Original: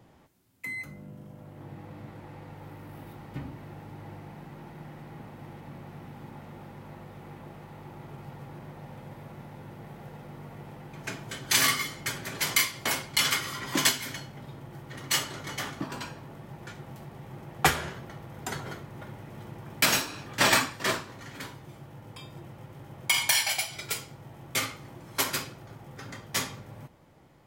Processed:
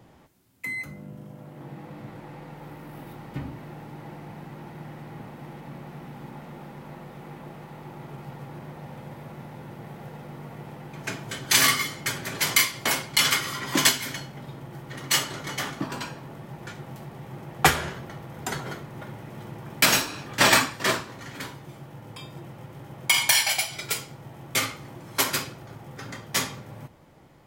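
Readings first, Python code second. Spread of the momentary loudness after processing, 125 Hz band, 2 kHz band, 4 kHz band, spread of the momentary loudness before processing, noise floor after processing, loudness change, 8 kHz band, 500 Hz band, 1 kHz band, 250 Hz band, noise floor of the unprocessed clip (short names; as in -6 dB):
22 LU, +3.5 dB, +4.0 dB, +4.0 dB, 22 LU, -46 dBFS, +4.0 dB, +4.0 dB, +4.0 dB, +4.0 dB, +4.0 dB, -49 dBFS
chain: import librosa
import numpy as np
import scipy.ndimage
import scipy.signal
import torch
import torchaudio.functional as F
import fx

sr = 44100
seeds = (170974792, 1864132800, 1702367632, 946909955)

y = fx.hum_notches(x, sr, base_hz=50, count=2)
y = y * 10.0 ** (4.0 / 20.0)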